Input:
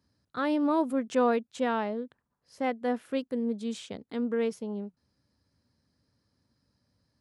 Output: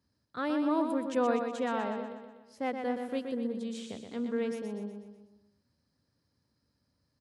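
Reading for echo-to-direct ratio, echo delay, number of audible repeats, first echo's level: -4.5 dB, 0.123 s, 5, -6.0 dB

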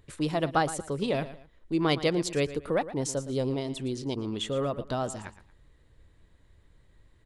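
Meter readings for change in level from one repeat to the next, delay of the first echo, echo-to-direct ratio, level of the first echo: -10.0 dB, 0.115 s, -14.0 dB, -14.5 dB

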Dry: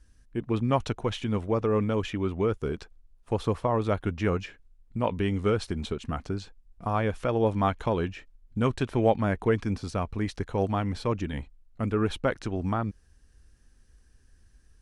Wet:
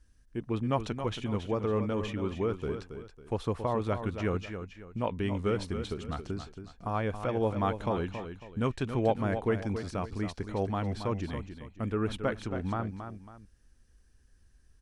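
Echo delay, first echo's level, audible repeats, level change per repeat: 0.275 s, -9.0 dB, 2, -9.0 dB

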